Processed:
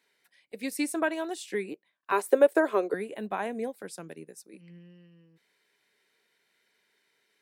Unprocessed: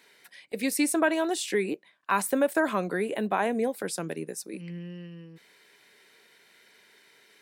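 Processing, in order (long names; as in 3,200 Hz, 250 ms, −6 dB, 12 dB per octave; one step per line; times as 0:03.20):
0:02.12–0:02.94: high-pass with resonance 410 Hz, resonance Q 4.9
expander for the loud parts 1.5 to 1, over −41 dBFS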